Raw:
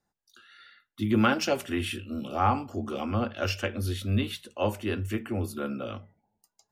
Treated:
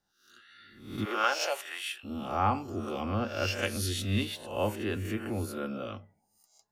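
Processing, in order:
peak hold with a rise ahead of every peak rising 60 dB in 0.59 s
0:01.04–0:02.03: high-pass filter 400 Hz → 890 Hz 24 dB per octave
0:03.61–0:04.23: parametric band 6,900 Hz +14.5 dB → +7 dB 1.9 octaves
level −4 dB

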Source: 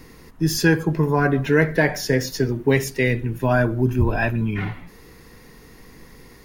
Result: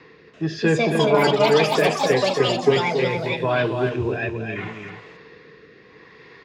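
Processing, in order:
rotating-speaker cabinet horn 0.75 Hz
in parallel at −3.5 dB: soft clipping −18 dBFS, distortion −10 dB
on the sum: loudspeaker in its box 160–4,300 Hz, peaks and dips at 240 Hz −9 dB, 440 Hz +7 dB, 1,100 Hz +6 dB, 1,700 Hz +7 dB, 2,500 Hz +6 dB, 3,600 Hz +4 dB
delay with pitch and tempo change per echo 336 ms, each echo +6 semitones, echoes 3
dynamic equaliser 1,600 Hz, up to −7 dB, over −31 dBFS, Q 1.7
on a send: single-tap delay 272 ms −6.5 dB
on the sum: level −4 dB

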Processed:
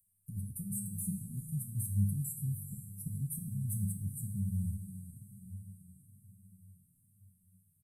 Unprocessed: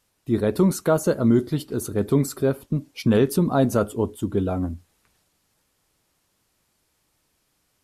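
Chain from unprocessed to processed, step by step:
noise gate −47 dBFS, range −34 dB
Chebyshev band-stop filter 180–8,500 Hz, order 5
low-shelf EQ 190 Hz −10 dB
in parallel at +1.5 dB: downward compressor, threshold −32 dBFS, peak gain reduction 8.5 dB
on the sum: brickwall limiter −24.5 dBFS, peak gain reduction 8.5 dB
upward compression, threshold −47 dBFS
tuned comb filter 100 Hz, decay 0.61 s, harmonics all, mix 80%
on a send: feedback delay with all-pass diffusion 452 ms, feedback 59%, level −11 dB
on the sum: barber-pole flanger 6.4 ms −1.1 Hz
level +8.5 dB

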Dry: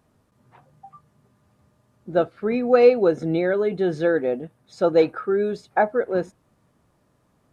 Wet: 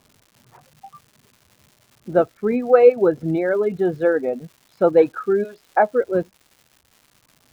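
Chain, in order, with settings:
low-pass filter 1,900 Hz 12 dB per octave
reverb reduction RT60 1.5 s
0:05.43–0:05.88: high-pass filter 630 Hz → 240 Hz 12 dB per octave
surface crackle 320 per second −44 dBFS
level +3.5 dB

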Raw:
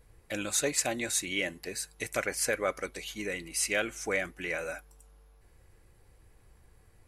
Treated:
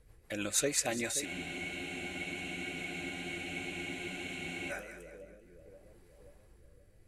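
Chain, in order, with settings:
echo with a time of its own for lows and highs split 630 Hz, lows 528 ms, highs 195 ms, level −11.5 dB
rotating-speaker cabinet horn 6.3 Hz, later 0.7 Hz, at 0:03.33
frozen spectrum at 0:01.27, 3.43 s

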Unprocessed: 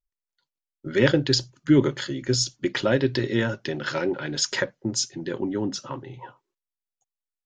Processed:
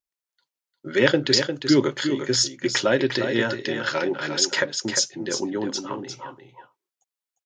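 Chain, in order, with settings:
high-pass filter 370 Hz 6 dB per octave
single-tap delay 352 ms −7.5 dB
level +3.5 dB

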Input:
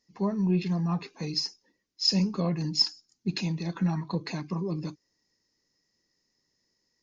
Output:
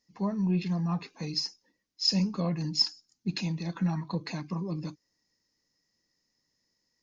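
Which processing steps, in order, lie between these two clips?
parametric band 390 Hz −6 dB 0.28 octaves
level −1.5 dB

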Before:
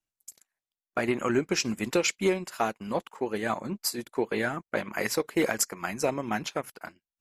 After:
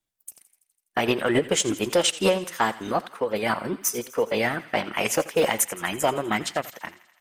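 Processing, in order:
formants moved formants +4 semitones
in parallel at −5 dB: hard clipping −20 dBFS, distortion −16 dB
on the sum: delay with a high-pass on its return 83 ms, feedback 68%, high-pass 1,400 Hz, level −17.5 dB
feedback echo with a swinging delay time 89 ms, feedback 31%, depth 112 cents, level −20 dB
level +1 dB

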